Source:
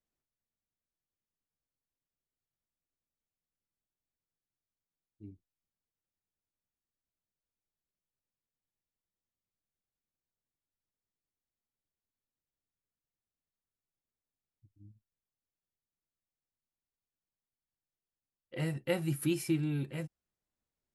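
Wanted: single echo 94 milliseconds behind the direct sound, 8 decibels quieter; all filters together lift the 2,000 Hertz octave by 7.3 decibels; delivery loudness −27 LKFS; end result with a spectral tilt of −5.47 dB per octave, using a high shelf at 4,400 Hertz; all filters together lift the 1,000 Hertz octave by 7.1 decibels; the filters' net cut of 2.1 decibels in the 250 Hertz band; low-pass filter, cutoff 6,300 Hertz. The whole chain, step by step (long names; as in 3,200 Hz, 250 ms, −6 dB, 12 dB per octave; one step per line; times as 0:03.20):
low-pass filter 6,300 Hz
parametric band 250 Hz −4.5 dB
parametric band 1,000 Hz +8.5 dB
parametric band 2,000 Hz +8.5 dB
high-shelf EQ 4,400 Hz −9 dB
single-tap delay 94 ms −8 dB
level +7 dB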